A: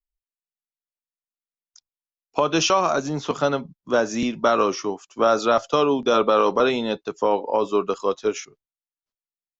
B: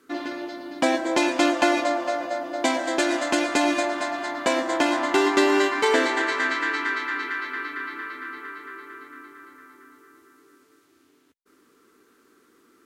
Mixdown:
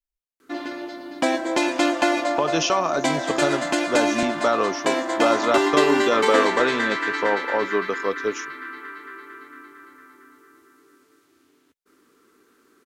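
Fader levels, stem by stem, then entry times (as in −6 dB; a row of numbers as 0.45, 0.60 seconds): −2.5, 0.0 decibels; 0.00, 0.40 seconds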